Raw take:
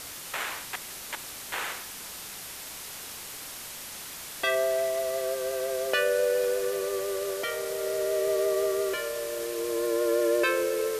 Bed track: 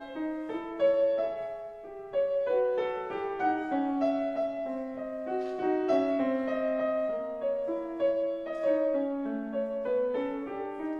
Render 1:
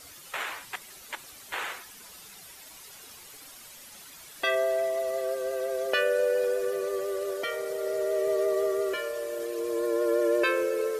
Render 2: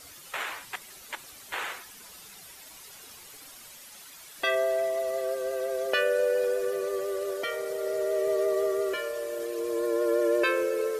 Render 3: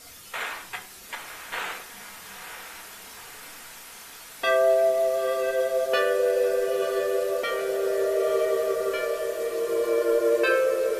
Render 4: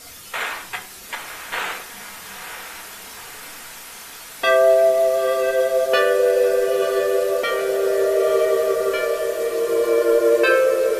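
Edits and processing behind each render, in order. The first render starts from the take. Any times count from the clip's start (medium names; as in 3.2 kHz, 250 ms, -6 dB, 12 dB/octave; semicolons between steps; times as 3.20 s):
noise reduction 11 dB, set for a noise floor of -41 dBFS
3.77–4.38 s: bass shelf 360 Hz -5.5 dB
echo that smears into a reverb 953 ms, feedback 63%, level -8 dB; simulated room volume 400 m³, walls furnished, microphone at 1.7 m
trim +6 dB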